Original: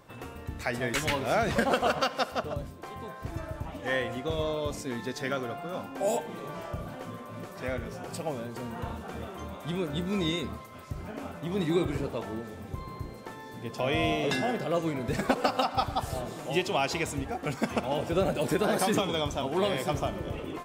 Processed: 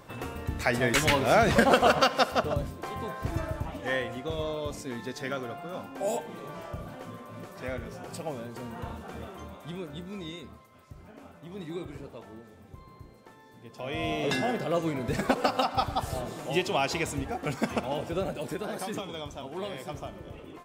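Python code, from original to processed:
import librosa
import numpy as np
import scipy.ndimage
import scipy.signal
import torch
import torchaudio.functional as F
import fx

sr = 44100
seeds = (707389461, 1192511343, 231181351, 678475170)

y = fx.gain(x, sr, db=fx.line((3.41, 5.0), (4.1, -2.0), (9.28, -2.0), (10.24, -10.5), (13.69, -10.5), (14.3, 0.5), (17.68, 0.5), (18.66, -8.5)))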